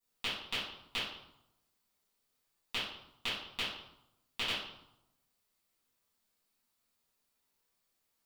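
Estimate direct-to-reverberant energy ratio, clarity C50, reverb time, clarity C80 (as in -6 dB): -14.0 dB, 1.0 dB, 0.80 s, 5.5 dB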